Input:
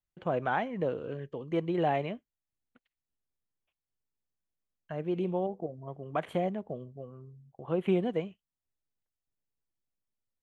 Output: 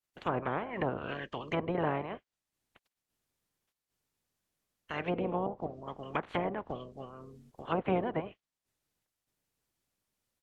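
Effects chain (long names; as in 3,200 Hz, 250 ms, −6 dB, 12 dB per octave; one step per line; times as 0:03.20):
ceiling on every frequency bin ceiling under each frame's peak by 25 dB
treble cut that deepens with the level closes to 970 Hz, closed at −27.5 dBFS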